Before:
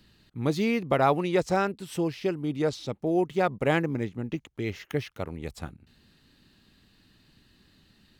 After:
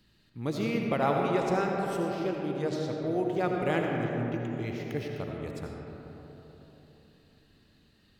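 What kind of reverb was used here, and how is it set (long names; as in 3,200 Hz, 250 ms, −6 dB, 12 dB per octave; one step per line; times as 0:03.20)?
comb and all-pass reverb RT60 3.9 s, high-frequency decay 0.35×, pre-delay 40 ms, DRR 0 dB
level −6 dB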